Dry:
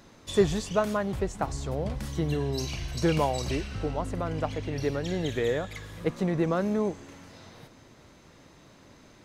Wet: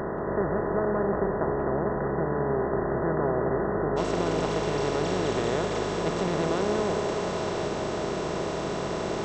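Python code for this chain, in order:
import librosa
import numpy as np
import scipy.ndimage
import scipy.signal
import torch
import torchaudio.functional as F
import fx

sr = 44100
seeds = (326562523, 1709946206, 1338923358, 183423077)

y = fx.bin_compress(x, sr, power=0.2)
y = fx.brickwall_lowpass(y, sr, high_hz=fx.steps((0.0, 2000.0), (3.96, 8500.0)))
y = fx.echo_tape(y, sr, ms=183, feedback_pct=62, wet_db=-5.5, lp_hz=1500.0, drive_db=4.0, wow_cents=8)
y = F.gain(torch.from_numpy(y), -9.0).numpy()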